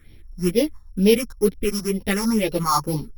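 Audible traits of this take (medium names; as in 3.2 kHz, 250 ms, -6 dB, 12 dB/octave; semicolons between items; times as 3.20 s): a buzz of ramps at a fixed pitch in blocks of 8 samples; phasing stages 4, 2.1 Hz, lowest notch 430–1300 Hz; tremolo saw up 6.1 Hz, depth 30%; a shimmering, thickened sound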